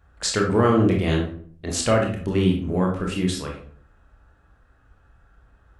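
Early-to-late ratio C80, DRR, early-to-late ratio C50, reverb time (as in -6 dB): 10.5 dB, -0.5 dB, 5.0 dB, 0.50 s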